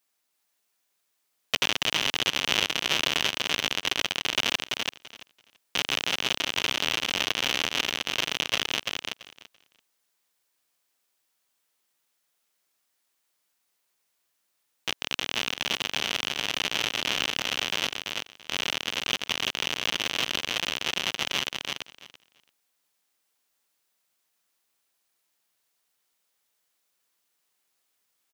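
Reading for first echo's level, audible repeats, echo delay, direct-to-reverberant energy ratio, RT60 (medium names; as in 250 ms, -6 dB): -4.0 dB, 2, 336 ms, no reverb, no reverb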